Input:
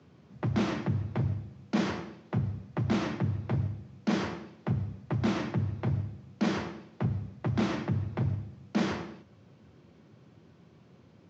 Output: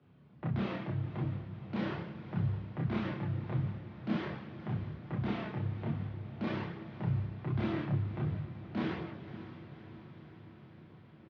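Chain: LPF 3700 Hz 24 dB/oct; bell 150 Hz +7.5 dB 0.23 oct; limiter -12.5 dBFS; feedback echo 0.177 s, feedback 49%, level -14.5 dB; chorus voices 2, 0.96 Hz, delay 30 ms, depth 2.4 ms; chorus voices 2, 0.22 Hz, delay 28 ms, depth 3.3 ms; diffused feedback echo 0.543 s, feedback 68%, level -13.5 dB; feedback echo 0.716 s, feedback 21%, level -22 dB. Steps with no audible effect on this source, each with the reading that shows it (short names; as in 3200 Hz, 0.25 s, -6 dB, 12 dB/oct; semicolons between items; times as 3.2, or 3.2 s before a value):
limiter -12.5 dBFS: input peak -16.5 dBFS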